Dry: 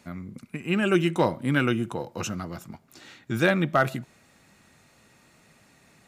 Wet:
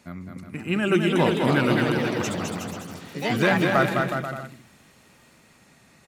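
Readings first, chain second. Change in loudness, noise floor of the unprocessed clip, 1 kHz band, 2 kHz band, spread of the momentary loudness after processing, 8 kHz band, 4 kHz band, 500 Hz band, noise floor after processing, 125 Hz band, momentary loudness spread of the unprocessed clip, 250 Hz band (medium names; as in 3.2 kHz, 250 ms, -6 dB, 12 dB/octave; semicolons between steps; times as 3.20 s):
+2.5 dB, -60 dBFS, +3.5 dB, +3.5 dB, 17 LU, +3.5 dB, +4.5 dB, +3.5 dB, -56 dBFS, +2.5 dB, 16 LU, +3.0 dB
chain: ever faster or slower copies 533 ms, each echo +4 st, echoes 3, each echo -6 dB; on a send: bouncing-ball echo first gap 210 ms, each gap 0.75×, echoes 5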